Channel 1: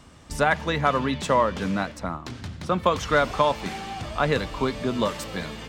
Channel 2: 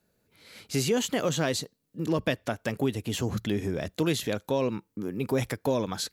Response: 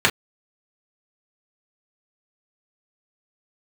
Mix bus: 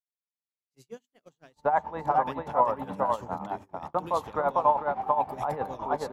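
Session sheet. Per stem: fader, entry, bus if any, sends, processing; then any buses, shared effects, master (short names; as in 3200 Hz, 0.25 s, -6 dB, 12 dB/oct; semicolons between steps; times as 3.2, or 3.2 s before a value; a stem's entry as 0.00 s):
-5.5 dB, 1.25 s, no send, echo send -3.5 dB, synth low-pass 850 Hz, resonance Q 4.9; tilt +2.5 dB/oct
-13.0 dB, 0.00 s, no send, echo send -20 dB, notches 50/100/150/200/250/300 Hz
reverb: off
echo: echo 0.449 s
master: gate -36 dBFS, range -42 dB; tremolo 9.6 Hz, depth 70%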